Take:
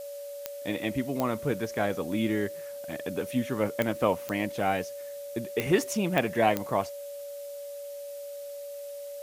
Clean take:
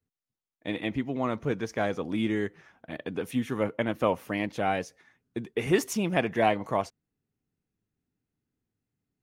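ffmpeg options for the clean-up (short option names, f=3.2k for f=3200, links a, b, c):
-af "adeclick=t=4,bandreject=f=570:w=30,afftdn=nr=30:nf=-40"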